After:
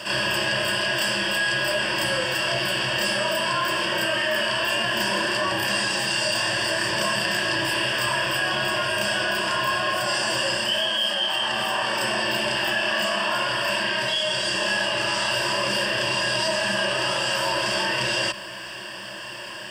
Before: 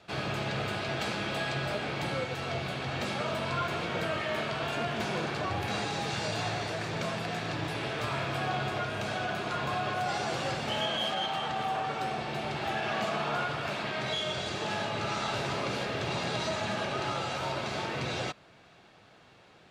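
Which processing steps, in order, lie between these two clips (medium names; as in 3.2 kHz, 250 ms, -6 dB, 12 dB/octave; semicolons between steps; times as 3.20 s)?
tilt EQ +3 dB/octave; band-stop 4.1 kHz, Q 6.2; reverse echo 31 ms -4.5 dB; gain riding 0.5 s; rippled EQ curve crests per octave 1.3, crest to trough 15 dB; level flattener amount 50%; trim +2.5 dB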